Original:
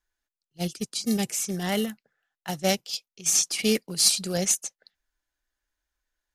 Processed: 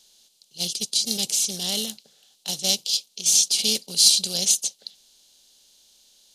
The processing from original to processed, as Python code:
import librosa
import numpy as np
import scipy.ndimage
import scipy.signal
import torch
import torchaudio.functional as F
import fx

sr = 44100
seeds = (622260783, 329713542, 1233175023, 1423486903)

y = fx.bin_compress(x, sr, power=0.6)
y = fx.high_shelf_res(y, sr, hz=2600.0, db=10.0, q=3.0)
y = F.gain(torch.from_numpy(y), -10.0).numpy()